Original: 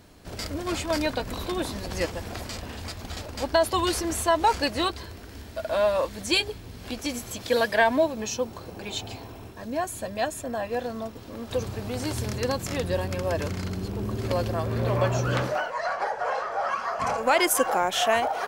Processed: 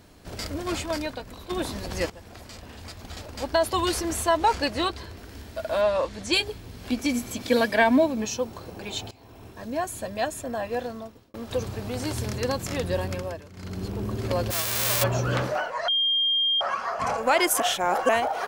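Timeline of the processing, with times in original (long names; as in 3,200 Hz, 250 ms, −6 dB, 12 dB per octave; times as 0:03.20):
0:00.77–0:01.50: fade out quadratic, to −10 dB
0:02.10–0:03.85: fade in, from −12.5 dB
0:04.37–0:05.18: high-shelf EQ 9,400 Hz −6.5 dB
0:05.81–0:06.33: low-pass filter 7,300 Hz
0:06.90–0:08.25: hollow resonant body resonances 250/2,300 Hz, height 10 dB
0:09.11–0:09.59: fade in, from −21 dB
0:10.80–0:11.34: fade out
0:13.11–0:13.83: duck −17 dB, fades 0.31 s
0:14.50–0:15.02: spectral envelope flattened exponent 0.1
0:15.88–0:16.61: beep over 3,210 Hz −20 dBFS
0:17.60–0:18.09: reverse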